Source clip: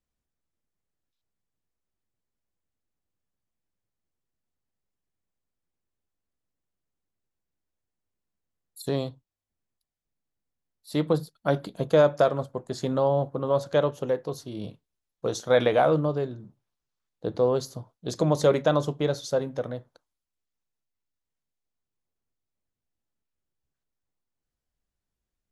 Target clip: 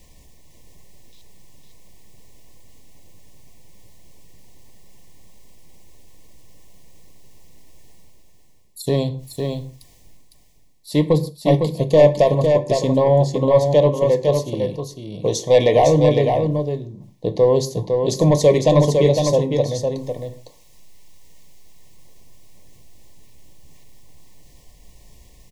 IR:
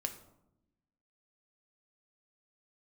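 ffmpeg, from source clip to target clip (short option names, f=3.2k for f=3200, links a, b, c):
-filter_complex "[0:a]equalizer=f=6.2k:t=o:w=0.92:g=3,areverse,acompressor=mode=upward:threshold=-36dB:ratio=2.5,areverse,aeval=exprs='0.447*sin(PI/2*1.58*val(0)/0.447)':c=same,asuperstop=centerf=1400:order=20:qfactor=2.2,aecho=1:1:506:0.562,asplit=2[a][b];[1:a]atrim=start_sample=2205,afade=t=out:st=0.21:d=0.01,atrim=end_sample=9702,lowshelf=f=220:g=5[c];[b][c]afir=irnorm=-1:irlink=0,volume=0.5dB[d];[a][d]amix=inputs=2:normalize=0,volume=-6.5dB"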